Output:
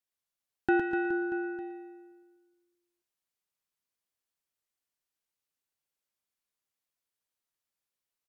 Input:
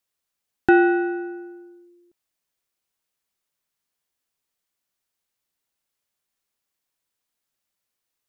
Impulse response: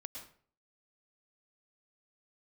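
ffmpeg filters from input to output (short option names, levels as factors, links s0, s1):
-filter_complex "[0:a]aecho=1:1:110|247.5|419.4|634.2|902.8:0.631|0.398|0.251|0.158|0.1[s0];[1:a]atrim=start_sample=2205,afade=t=out:st=0.15:d=0.01,atrim=end_sample=7056,asetrate=38367,aresample=44100[s1];[s0][s1]afir=irnorm=-1:irlink=0,volume=0.531"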